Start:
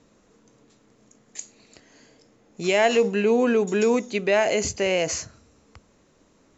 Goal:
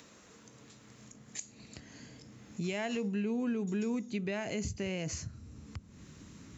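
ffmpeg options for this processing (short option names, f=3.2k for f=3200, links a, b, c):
-filter_complex "[0:a]acrossover=split=1200[a][b];[b]acompressor=mode=upward:threshold=-52dB:ratio=2.5[c];[a][c]amix=inputs=2:normalize=0,asubboost=boost=10:cutoff=180,acompressor=threshold=-40dB:ratio=2.5,highpass=81"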